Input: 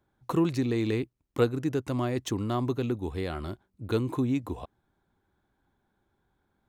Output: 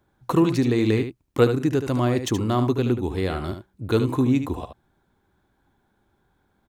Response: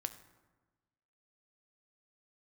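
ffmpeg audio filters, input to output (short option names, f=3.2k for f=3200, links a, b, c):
-af "aecho=1:1:74:0.355,volume=6.5dB"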